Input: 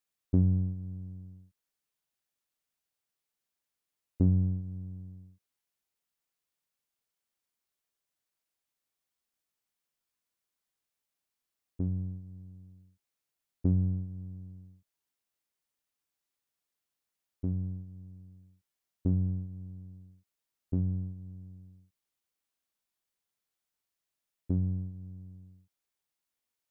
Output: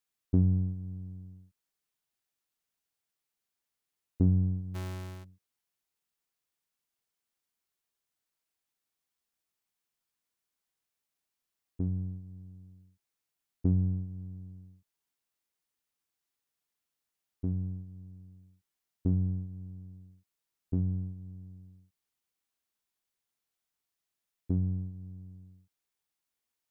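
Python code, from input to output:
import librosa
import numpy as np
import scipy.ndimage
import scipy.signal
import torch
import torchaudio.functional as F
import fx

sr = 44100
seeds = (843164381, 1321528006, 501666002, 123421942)

y = fx.halfwave_hold(x, sr, at=(4.74, 5.23), fade=0.02)
y = fx.notch(y, sr, hz=570.0, q=12.0)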